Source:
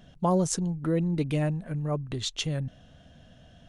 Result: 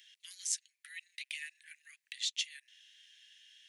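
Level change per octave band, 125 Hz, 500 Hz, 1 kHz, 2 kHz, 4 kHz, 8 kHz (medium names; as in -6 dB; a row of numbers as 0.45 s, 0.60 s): under -40 dB, under -40 dB, under -40 dB, -1.5 dB, -2.0 dB, -2.5 dB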